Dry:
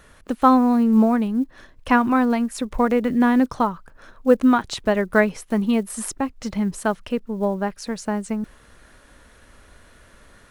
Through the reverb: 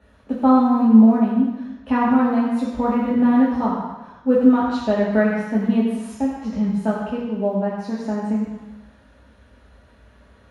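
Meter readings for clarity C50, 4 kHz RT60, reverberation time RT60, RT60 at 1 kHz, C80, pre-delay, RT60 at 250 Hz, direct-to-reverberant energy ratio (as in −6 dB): 0.5 dB, 1.2 s, 1.1 s, 1.1 s, 2.5 dB, 3 ms, 0.95 s, −6.5 dB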